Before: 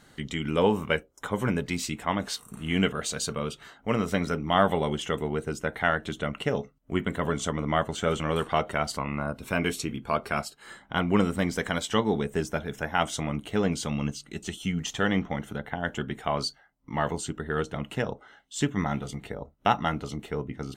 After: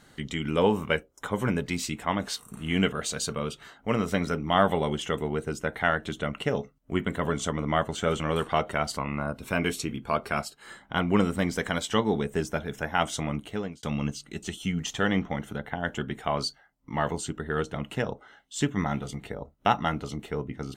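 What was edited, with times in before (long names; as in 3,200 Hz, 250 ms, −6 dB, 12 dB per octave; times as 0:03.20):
0:13.34–0:13.83: fade out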